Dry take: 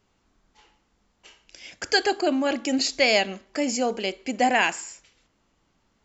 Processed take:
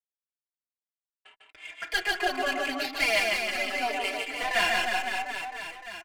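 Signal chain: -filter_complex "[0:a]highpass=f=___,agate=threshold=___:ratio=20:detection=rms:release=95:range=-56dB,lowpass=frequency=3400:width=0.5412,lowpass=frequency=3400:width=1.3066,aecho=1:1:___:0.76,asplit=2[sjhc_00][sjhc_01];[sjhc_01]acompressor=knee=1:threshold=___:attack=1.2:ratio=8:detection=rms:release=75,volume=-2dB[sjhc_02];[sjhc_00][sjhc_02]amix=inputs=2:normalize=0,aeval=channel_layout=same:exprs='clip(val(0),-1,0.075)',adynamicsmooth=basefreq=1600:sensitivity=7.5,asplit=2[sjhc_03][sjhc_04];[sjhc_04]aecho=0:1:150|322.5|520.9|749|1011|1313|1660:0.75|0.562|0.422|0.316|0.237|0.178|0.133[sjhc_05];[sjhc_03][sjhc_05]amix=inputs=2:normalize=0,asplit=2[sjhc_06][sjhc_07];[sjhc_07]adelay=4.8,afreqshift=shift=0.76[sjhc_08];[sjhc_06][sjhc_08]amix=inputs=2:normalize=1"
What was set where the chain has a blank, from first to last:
910, -52dB, 2.9, -36dB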